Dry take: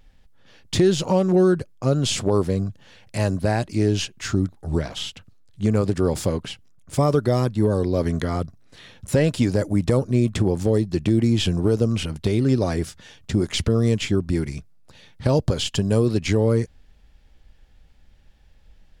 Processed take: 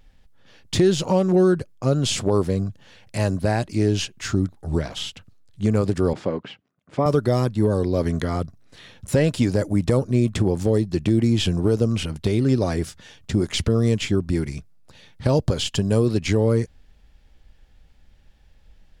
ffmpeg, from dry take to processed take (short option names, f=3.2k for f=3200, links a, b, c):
-filter_complex "[0:a]asettb=1/sr,asplit=3[a][b][c];[a]atrim=end=6.134[d];[b]atrim=start=6.13:end=7.06,asetpts=PTS-STARTPTS,afade=t=in:d=0.004:c=qsin,afade=t=out:st=0.926:d=0.004:c=qsin,highpass=190,lowpass=2.4k[e];[c]atrim=start=7.056[f];[d][e]acrossfade=d=0.004:c1=hsin:c2=qsin[g];[g][f]acrossfade=d=0.004:c1=qsin:c2=hsin"